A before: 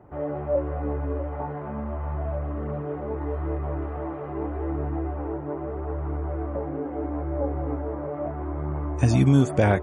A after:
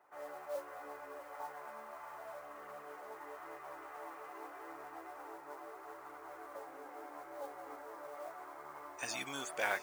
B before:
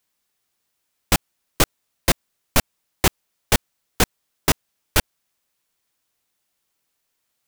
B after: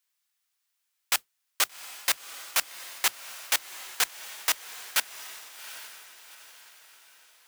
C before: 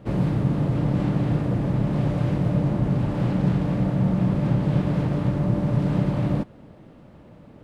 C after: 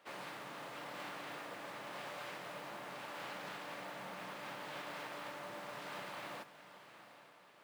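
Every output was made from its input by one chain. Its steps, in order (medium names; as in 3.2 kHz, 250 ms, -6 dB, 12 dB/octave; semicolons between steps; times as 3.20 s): high-pass 1.2 kHz 12 dB/octave; modulation noise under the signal 19 dB; echo that smears into a reverb 777 ms, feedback 45%, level -12.5 dB; trim -4 dB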